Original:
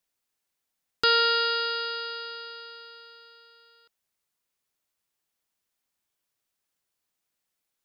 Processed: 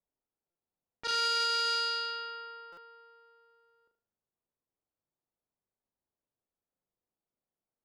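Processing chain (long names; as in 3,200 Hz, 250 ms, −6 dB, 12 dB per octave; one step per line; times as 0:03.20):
low-pass that shuts in the quiet parts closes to 730 Hz, open at −25 dBFS
brickwall limiter −20 dBFS, peak gain reduction 9.5 dB
flutter between parallel walls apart 6.5 metres, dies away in 0.39 s
buffer that repeats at 0:00.50/0:02.72, samples 256, times 8
saturating transformer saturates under 2,200 Hz
level −2 dB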